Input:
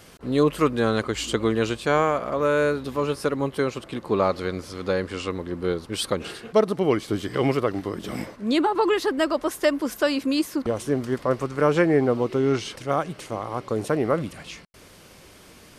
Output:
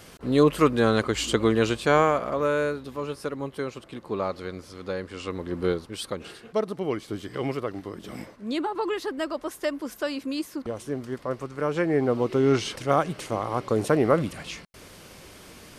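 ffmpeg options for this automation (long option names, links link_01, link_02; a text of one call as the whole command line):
ffmpeg -i in.wav -af "volume=18dB,afade=type=out:start_time=2.01:duration=0.82:silence=0.398107,afade=type=in:start_time=5.14:duration=0.51:silence=0.398107,afade=type=out:start_time=5.65:duration=0.28:silence=0.398107,afade=type=in:start_time=11.73:duration=0.9:silence=0.354813" out.wav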